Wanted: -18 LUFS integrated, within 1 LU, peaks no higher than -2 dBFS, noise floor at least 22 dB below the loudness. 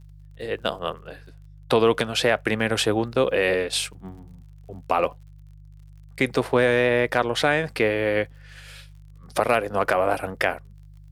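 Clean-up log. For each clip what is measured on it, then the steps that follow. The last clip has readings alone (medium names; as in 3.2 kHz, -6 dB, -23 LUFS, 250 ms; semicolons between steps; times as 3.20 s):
tick rate 46 per s; hum 50 Hz; highest harmonic 150 Hz; hum level -44 dBFS; loudness -23.0 LUFS; peak level -5.5 dBFS; loudness target -18.0 LUFS
-> de-click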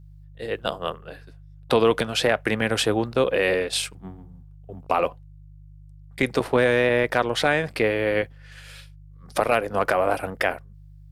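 tick rate 0.36 per s; hum 50 Hz; highest harmonic 150 Hz; hum level -44 dBFS
-> de-hum 50 Hz, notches 3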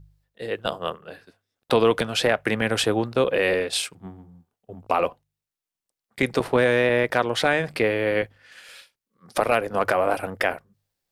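hum not found; loudness -23.5 LUFS; peak level -5.5 dBFS; loudness target -18.0 LUFS
-> trim +5.5 dB; peak limiter -2 dBFS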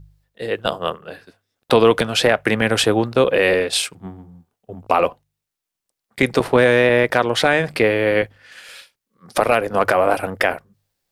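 loudness -18.0 LUFS; peak level -2.0 dBFS; noise floor -83 dBFS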